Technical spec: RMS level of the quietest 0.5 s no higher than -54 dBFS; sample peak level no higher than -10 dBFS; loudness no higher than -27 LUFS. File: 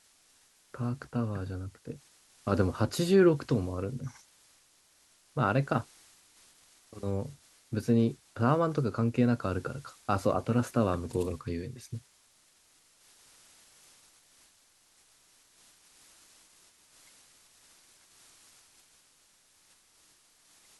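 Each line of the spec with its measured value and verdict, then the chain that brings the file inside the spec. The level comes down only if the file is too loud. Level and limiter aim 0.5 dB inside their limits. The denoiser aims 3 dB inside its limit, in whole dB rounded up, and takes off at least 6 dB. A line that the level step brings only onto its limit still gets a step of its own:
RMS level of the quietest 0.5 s -65 dBFS: OK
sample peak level -11.5 dBFS: OK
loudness -30.5 LUFS: OK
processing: none

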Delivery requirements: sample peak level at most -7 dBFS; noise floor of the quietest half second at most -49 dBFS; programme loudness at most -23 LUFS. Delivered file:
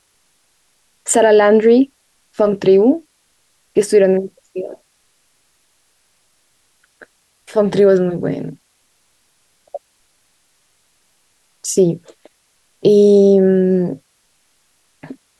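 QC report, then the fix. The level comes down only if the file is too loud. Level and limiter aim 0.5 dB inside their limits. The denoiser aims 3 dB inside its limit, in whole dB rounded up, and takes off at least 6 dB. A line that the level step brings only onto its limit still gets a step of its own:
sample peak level -2.5 dBFS: fail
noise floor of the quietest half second -61 dBFS: OK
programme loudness -14.0 LUFS: fail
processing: gain -9.5 dB

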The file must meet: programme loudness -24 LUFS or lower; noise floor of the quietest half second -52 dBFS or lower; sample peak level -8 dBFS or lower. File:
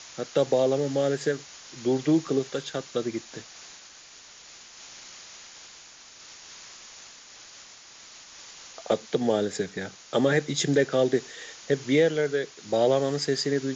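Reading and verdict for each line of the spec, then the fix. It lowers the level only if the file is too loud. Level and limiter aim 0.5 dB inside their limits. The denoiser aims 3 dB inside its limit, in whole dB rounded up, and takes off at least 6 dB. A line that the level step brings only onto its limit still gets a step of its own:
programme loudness -26.0 LUFS: OK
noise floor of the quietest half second -49 dBFS: fail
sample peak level -10.0 dBFS: OK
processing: denoiser 6 dB, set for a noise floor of -49 dBFS

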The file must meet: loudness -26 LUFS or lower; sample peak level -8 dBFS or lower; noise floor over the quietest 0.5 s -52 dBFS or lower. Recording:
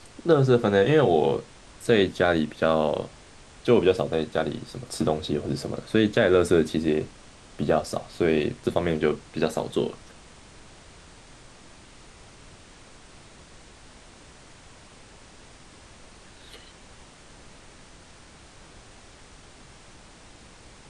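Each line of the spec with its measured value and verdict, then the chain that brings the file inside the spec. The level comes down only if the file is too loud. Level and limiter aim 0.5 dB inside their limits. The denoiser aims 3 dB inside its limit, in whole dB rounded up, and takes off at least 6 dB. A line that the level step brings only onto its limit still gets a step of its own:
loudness -24.0 LUFS: fail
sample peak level -5.5 dBFS: fail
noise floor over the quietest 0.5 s -49 dBFS: fail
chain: denoiser 6 dB, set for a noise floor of -49 dBFS; gain -2.5 dB; limiter -8.5 dBFS

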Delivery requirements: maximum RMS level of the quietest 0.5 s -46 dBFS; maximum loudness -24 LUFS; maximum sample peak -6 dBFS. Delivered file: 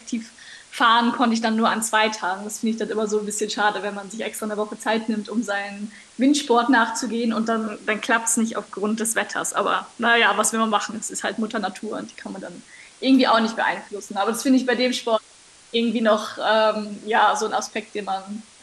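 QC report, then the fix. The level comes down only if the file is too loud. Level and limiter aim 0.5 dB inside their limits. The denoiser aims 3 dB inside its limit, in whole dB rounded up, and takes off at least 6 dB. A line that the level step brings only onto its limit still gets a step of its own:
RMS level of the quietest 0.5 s -50 dBFS: OK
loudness -22.0 LUFS: fail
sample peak -4.0 dBFS: fail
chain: gain -2.5 dB

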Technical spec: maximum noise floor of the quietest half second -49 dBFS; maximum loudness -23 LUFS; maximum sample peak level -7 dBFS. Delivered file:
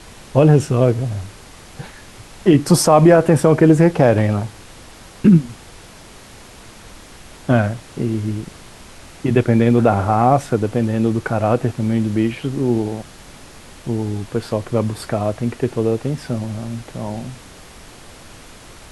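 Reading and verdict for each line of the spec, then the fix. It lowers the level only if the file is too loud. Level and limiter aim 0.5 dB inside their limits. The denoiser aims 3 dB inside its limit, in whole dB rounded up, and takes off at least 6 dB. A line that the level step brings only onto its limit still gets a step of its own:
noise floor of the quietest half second -41 dBFS: fail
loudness -17.0 LUFS: fail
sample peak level -1.5 dBFS: fail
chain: denoiser 6 dB, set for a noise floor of -41 dBFS; gain -6.5 dB

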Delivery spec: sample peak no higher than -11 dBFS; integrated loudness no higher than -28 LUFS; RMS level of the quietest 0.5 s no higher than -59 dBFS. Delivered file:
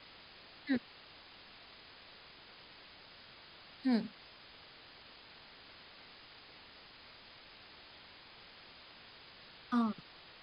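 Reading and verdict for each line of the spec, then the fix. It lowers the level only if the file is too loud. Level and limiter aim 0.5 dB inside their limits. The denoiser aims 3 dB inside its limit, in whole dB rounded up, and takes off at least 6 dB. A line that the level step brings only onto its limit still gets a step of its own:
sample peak -22.5 dBFS: OK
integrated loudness -43.0 LUFS: OK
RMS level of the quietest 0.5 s -57 dBFS: fail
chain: denoiser 6 dB, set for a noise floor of -57 dBFS

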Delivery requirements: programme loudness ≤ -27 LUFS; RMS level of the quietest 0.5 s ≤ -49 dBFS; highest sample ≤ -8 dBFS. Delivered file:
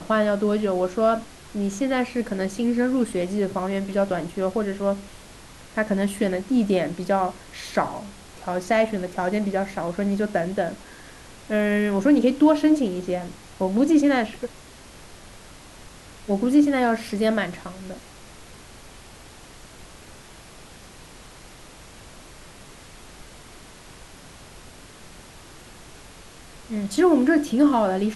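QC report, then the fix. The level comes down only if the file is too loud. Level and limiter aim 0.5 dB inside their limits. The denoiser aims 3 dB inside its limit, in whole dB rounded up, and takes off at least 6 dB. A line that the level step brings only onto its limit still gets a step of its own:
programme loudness -23.0 LUFS: fail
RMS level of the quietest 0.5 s -45 dBFS: fail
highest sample -6.5 dBFS: fail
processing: gain -4.5 dB

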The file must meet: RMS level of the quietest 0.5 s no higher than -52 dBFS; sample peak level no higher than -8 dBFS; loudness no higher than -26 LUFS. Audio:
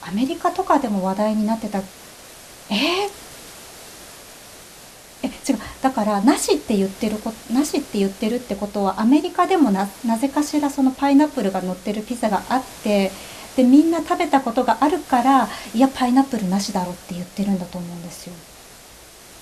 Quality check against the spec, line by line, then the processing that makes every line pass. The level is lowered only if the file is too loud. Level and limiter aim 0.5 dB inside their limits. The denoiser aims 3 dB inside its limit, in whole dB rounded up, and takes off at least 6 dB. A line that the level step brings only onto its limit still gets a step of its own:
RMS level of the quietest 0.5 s -44 dBFS: fail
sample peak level -2.5 dBFS: fail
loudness -20.0 LUFS: fail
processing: denoiser 6 dB, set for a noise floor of -44 dBFS; gain -6.5 dB

